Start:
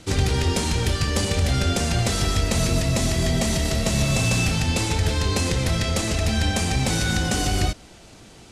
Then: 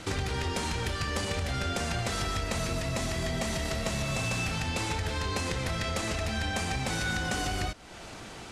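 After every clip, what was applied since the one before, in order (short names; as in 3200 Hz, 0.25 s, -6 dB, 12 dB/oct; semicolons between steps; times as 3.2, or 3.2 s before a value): compressor 2.5:1, threshold -36 dBFS, peak gain reduction 13 dB; bell 1300 Hz +8 dB 2.4 oct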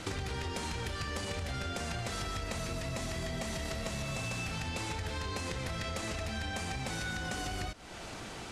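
compressor 5:1, threshold -34 dBFS, peak gain reduction 7 dB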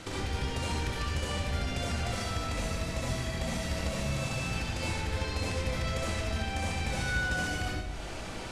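reverb RT60 0.70 s, pre-delay 59 ms, DRR -4.5 dB; gain -2.5 dB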